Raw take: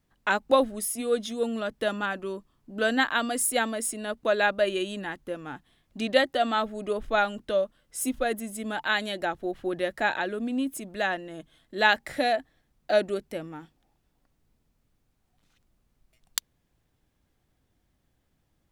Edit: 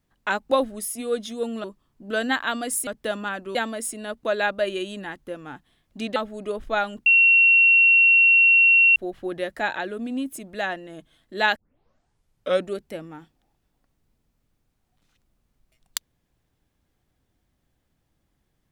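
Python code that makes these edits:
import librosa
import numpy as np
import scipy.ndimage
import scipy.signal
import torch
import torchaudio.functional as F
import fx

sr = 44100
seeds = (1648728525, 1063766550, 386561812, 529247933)

y = fx.edit(x, sr, fx.move(start_s=1.64, length_s=0.68, to_s=3.55),
    fx.cut(start_s=6.16, length_s=0.41),
    fx.bleep(start_s=7.47, length_s=1.9, hz=2730.0, db=-12.0),
    fx.tape_start(start_s=11.97, length_s=1.12), tone=tone)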